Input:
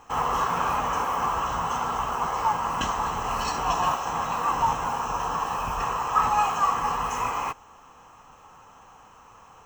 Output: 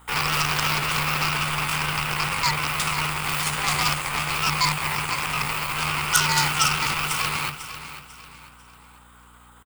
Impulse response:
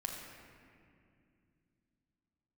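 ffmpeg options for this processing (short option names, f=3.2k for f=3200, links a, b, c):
-filter_complex "[0:a]highpass=130,equalizer=f=4.9k:t=o:w=1.2:g=-13.5,aeval=exprs='0.299*(cos(1*acos(clip(val(0)/0.299,-1,1)))-cos(1*PI/2))+0.00668*(cos(6*acos(clip(val(0)/0.299,-1,1)))-cos(6*PI/2))+0.075*(cos(8*acos(clip(val(0)/0.299,-1,1)))-cos(8*PI/2))':c=same,crystalizer=i=9:c=0,afreqshift=-120,asetrate=55563,aresample=44100,atempo=0.793701,aeval=exprs='val(0)+0.00501*(sin(2*PI*60*n/s)+sin(2*PI*2*60*n/s)/2+sin(2*PI*3*60*n/s)/3+sin(2*PI*4*60*n/s)/4+sin(2*PI*5*60*n/s)/5)':c=same,asplit=2[a][b];[b]aecho=0:1:496|992|1488|1984:0.251|0.0904|0.0326|0.0117[c];[a][c]amix=inputs=2:normalize=0,volume=-6.5dB"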